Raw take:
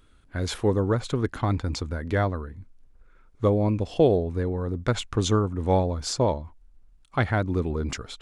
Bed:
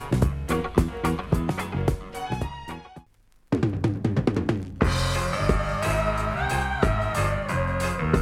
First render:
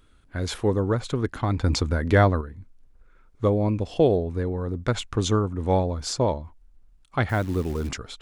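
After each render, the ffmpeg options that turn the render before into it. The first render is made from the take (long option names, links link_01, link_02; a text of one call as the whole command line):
ffmpeg -i in.wav -filter_complex "[0:a]asettb=1/sr,asplit=3[link_01][link_02][link_03];[link_01]atrim=end=7.294[link_04];[link_02]atrim=start=7.29:end=7.89,asetpts=PTS-STARTPTS,afade=type=in:duration=0.004:curve=qsin,afade=type=out:start_time=0.596:duration=0.004:curve=qsin,acrusher=bits=8:dc=4:mix=0:aa=0.000001[link_05];[link_03]atrim=start=7.886[link_06];[link_04][link_05]acrossfade=duration=0.004:curve1=hsin:curve2=qsin[link_07];[link_07][link_06]acrossfade=duration=0.004:curve1=qsin:curve2=hsin,asplit=3[link_08][link_09][link_10];[link_08]atrim=end=1.602[link_11];[link_09]atrim=start=1.598:end=2.412,asetpts=PTS-STARTPTS,volume=6.5dB[link_12];[link_10]atrim=start=2.408[link_13];[link_11][link_12]acrossfade=duration=0.004:curve1=hsin:curve2=hsin[link_14];[link_14][link_13]acrossfade=duration=0.004:curve1=hsin:curve2=hsin" out.wav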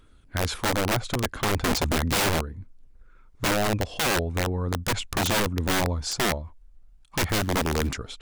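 ffmpeg -i in.wav -af "aphaser=in_gain=1:out_gain=1:delay=1.9:decay=0.27:speed=0.38:type=triangular,aeval=exprs='(mod(7.94*val(0)+1,2)-1)/7.94':channel_layout=same" out.wav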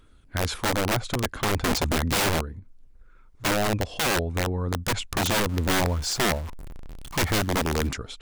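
ffmpeg -i in.wav -filter_complex "[0:a]asettb=1/sr,asplit=3[link_01][link_02][link_03];[link_01]atrim=end=2.594[link_04];[link_02]atrim=start=2.59:end=3.45,asetpts=PTS-STARTPTS,afade=type=in:duration=0.004:curve=qsin,afade=type=out:start_time=0.856:duration=0.004:curve=qsin,acompressor=threshold=-41dB:ratio=6:attack=3.2:release=140:knee=1:detection=peak[link_05];[link_03]atrim=start=3.446[link_06];[link_04][link_05]acrossfade=duration=0.004:curve1=hsin:curve2=qsin[link_07];[link_07][link_06]acrossfade=duration=0.004:curve1=qsin:curve2=hsin,asettb=1/sr,asplit=3[link_08][link_09][link_10];[link_08]atrim=end=5.494[link_11];[link_09]atrim=start=5.49:end=7.42,asetpts=PTS-STARTPTS,afade=type=in:duration=0.004:curve=qsin,afade=type=out:start_time=1.926:duration=0.004:curve=qsin,aeval=exprs='val(0)+0.5*0.0224*sgn(val(0))':channel_layout=same[link_12];[link_10]atrim=start=7.416[link_13];[link_11][link_12]acrossfade=duration=0.004:curve1=hsin:curve2=qsin[link_14];[link_14][link_13]acrossfade=duration=0.004:curve1=qsin:curve2=hsin" out.wav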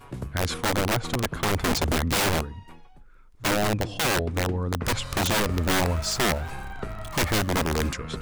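ffmpeg -i in.wav -i bed.wav -filter_complex "[1:a]volume=-13dB[link_01];[0:a][link_01]amix=inputs=2:normalize=0" out.wav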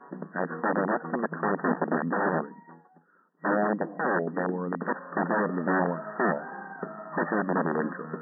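ffmpeg -i in.wav -af "afftfilt=real='re*between(b*sr/4096,160,1900)':imag='im*between(b*sr/4096,160,1900)':win_size=4096:overlap=0.75" out.wav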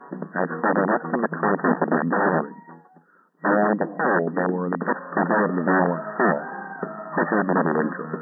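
ffmpeg -i in.wav -af "volume=6dB" out.wav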